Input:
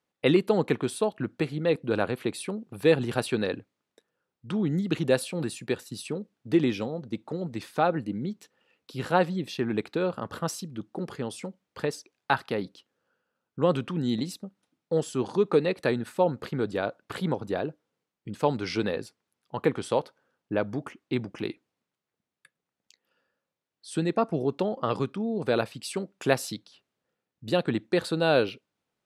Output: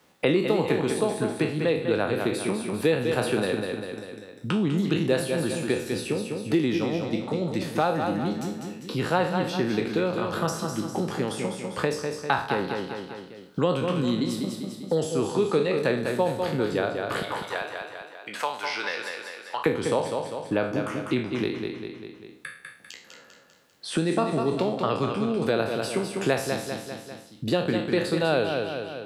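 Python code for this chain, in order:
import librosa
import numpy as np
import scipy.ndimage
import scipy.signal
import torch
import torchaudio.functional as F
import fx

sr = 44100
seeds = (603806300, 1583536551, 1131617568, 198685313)

y = fx.spec_trails(x, sr, decay_s=0.43)
y = fx.highpass(y, sr, hz=1200.0, slope=12, at=(17.22, 19.66))
y = fx.echo_feedback(y, sr, ms=198, feedback_pct=37, wet_db=-7.0)
y = fx.band_squash(y, sr, depth_pct=70)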